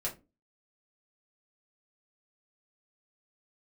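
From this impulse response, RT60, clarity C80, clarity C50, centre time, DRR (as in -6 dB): 0.25 s, 21.0 dB, 14.0 dB, 17 ms, -4.5 dB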